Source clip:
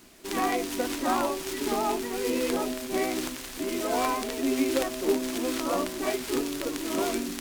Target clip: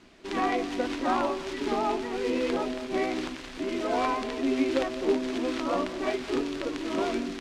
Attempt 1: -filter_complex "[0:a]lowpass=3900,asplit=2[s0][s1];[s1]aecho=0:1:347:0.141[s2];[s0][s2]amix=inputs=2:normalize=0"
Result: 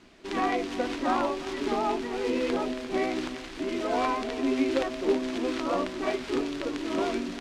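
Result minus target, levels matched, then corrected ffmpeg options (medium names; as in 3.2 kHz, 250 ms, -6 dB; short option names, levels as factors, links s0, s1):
echo 140 ms late
-filter_complex "[0:a]lowpass=3900,asplit=2[s0][s1];[s1]aecho=0:1:207:0.141[s2];[s0][s2]amix=inputs=2:normalize=0"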